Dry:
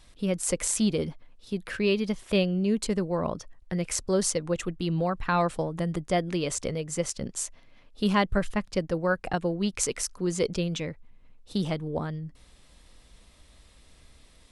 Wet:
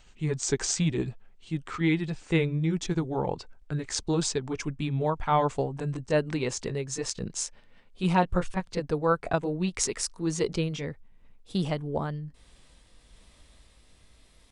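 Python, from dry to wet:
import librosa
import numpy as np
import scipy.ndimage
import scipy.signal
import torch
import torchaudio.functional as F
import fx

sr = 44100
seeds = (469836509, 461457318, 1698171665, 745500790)

y = fx.pitch_glide(x, sr, semitones=-4.5, runs='ending unshifted')
y = fx.dynamic_eq(y, sr, hz=840.0, q=1.1, threshold_db=-39.0, ratio=4.0, max_db=4)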